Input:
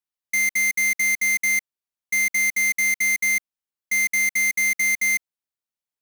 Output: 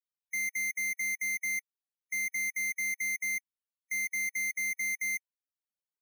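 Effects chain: peak limiter -31.5 dBFS, peak gain reduction 11.5 dB; loudest bins only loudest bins 32

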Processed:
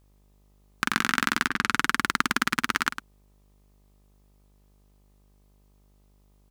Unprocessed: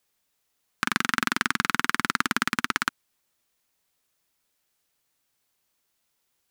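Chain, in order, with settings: 1.47–1.99 s: level-controlled noise filter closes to 570 Hz, open at -24 dBFS; mains buzz 50 Hz, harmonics 26, -61 dBFS -7 dB/octave; echo from a far wall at 18 m, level -10 dB

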